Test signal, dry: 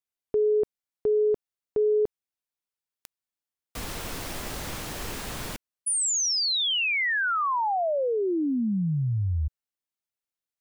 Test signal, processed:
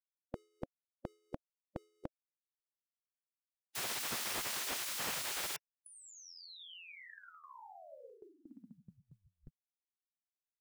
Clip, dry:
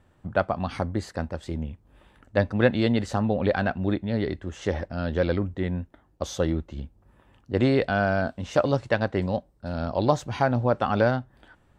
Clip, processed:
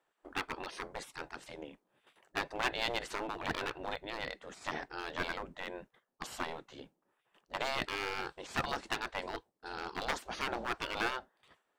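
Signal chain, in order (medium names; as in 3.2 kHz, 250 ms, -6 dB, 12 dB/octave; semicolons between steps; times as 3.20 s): hard clipper -19 dBFS; spectral gate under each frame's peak -15 dB weak; gate with hold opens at -50 dBFS, closes at -54 dBFS, hold 16 ms, range -11 dB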